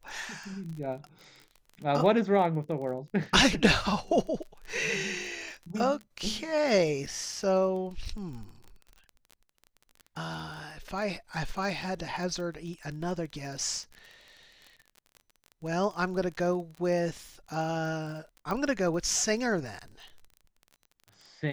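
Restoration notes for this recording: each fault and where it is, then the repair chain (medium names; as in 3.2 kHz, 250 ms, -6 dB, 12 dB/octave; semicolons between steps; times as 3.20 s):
crackle 28 per s -38 dBFS
18.51 s: pop -20 dBFS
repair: de-click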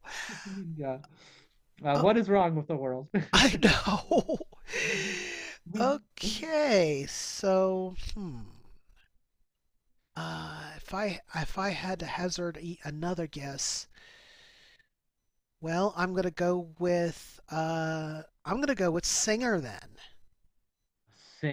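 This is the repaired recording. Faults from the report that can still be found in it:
nothing left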